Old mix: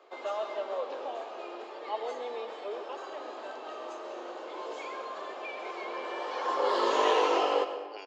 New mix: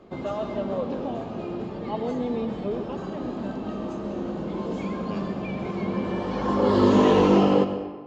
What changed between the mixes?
speech: entry -2.85 s; master: remove Bessel high-pass 690 Hz, order 8

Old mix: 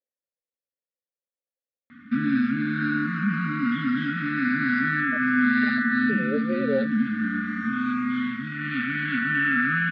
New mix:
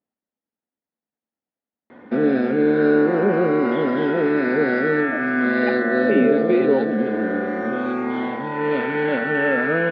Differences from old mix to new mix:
speech: remove vowel filter e; background: remove brick-wall FIR band-stop 290–1100 Hz

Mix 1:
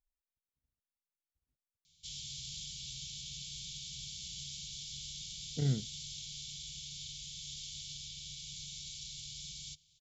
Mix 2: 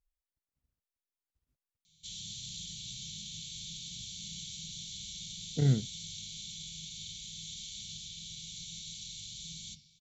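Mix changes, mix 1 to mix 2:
speech +5.5 dB; reverb: on

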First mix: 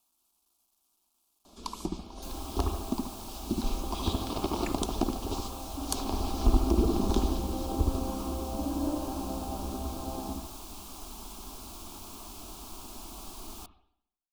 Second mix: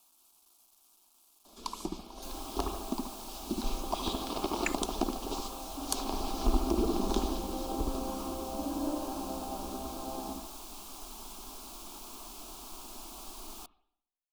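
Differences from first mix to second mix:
speech +9.5 dB; second sound: send -6.0 dB; master: add bell 90 Hz -14.5 dB 1.7 oct

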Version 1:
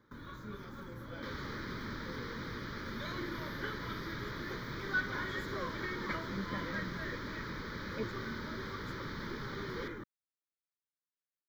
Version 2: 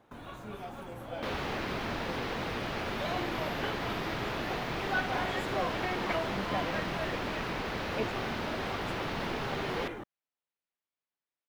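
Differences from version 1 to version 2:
second sound +5.0 dB; master: remove fixed phaser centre 2700 Hz, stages 6

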